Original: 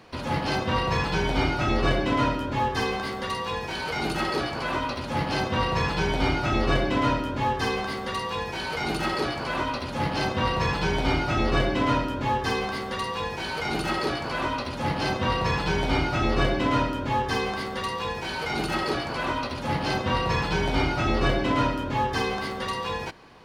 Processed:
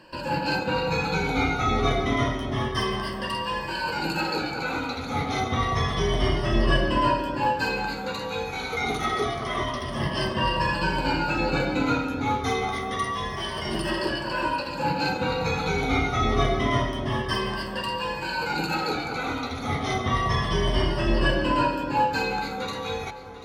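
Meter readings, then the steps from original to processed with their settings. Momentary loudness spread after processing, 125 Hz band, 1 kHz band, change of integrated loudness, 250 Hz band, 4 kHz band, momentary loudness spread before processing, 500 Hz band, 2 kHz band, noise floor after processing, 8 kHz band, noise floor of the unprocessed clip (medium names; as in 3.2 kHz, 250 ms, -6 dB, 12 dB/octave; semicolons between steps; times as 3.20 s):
6 LU, 0.0 dB, +0.5 dB, +0.5 dB, 0.0 dB, +0.5 dB, 6 LU, +0.5 dB, +0.5 dB, -33 dBFS, +0.5 dB, -33 dBFS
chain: drifting ripple filter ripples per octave 1.3, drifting -0.28 Hz, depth 17 dB; on a send: echo whose repeats swap between lows and highs 370 ms, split 1.4 kHz, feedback 58%, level -11 dB; on the sum: trim -3 dB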